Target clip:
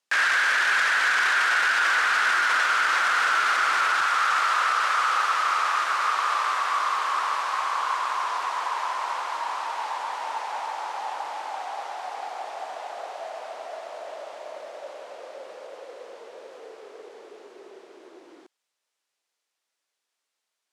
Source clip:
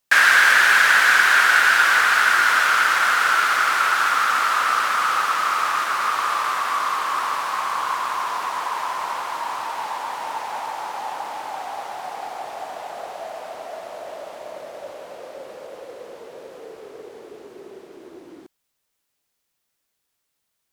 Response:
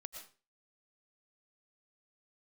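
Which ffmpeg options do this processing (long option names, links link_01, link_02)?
-af "asetnsamples=nb_out_samples=441:pad=0,asendcmd='4.01 highpass f 440',highpass=260,lowpass=7900,alimiter=limit=-12dB:level=0:latency=1:release=12,volume=-2dB"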